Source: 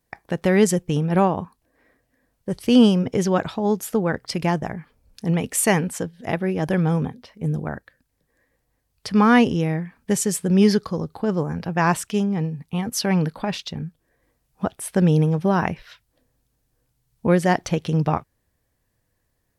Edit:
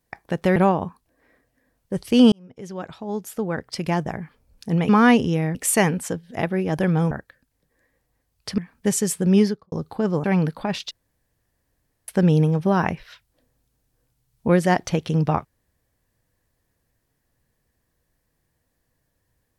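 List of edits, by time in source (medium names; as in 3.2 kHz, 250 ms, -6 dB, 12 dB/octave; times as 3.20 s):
0.56–1.12 s: delete
2.88–4.78 s: fade in
7.01–7.69 s: delete
9.16–9.82 s: move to 5.45 s
10.55–10.96 s: studio fade out
11.48–13.03 s: delete
13.70–14.87 s: room tone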